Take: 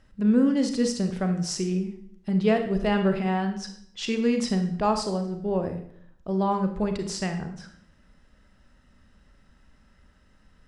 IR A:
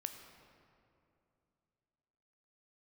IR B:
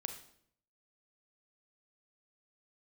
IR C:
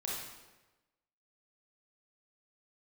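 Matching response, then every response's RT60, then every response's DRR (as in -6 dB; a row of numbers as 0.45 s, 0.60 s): B; 2.7 s, 0.65 s, 1.1 s; 5.5 dB, 6.0 dB, -4.5 dB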